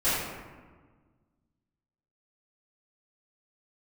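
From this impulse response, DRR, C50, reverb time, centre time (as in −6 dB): −17.0 dB, −1.5 dB, 1.5 s, 95 ms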